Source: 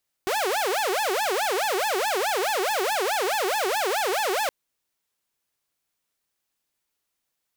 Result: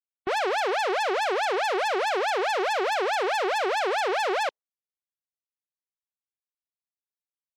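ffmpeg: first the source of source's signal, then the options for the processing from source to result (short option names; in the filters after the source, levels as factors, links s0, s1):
-f lavfi -i "aevalsrc='0.1*(2*mod((622.5*t-257.5/(2*PI*4.7)*sin(2*PI*4.7*t)),1)-1)':d=4.22:s=44100"
-af "afftdn=nr=36:nf=-34"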